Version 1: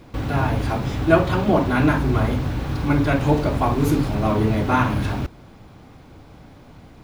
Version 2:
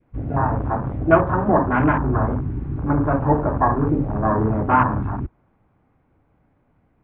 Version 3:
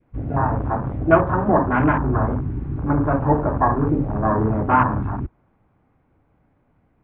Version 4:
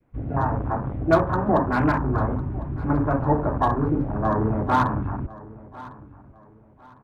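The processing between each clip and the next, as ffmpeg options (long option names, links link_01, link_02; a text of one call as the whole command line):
ffmpeg -i in.wav -af "adynamicequalizer=threshold=0.0178:dfrequency=1000:dqfactor=1.5:tfrequency=1000:tqfactor=1.5:attack=5:release=100:ratio=0.375:range=3.5:mode=boostabove:tftype=bell,afwtdn=0.0891,lowpass=frequency=2300:width=0.5412,lowpass=frequency=2300:width=1.3066,volume=-1dB" out.wav
ffmpeg -i in.wav -af anull out.wav
ffmpeg -i in.wav -filter_complex "[0:a]acrossover=split=250|1100[link_01][link_02][link_03];[link_03]volume=21.5dB,asoftclip=hard,volume=-21.5dB[link_04];[link_01][link_02][link_04]amix=inputs=3:normalize=0,aecho=1:1:1053|2106|3159:0.106|0.0328|0.0102,volume=-3dB" out.wav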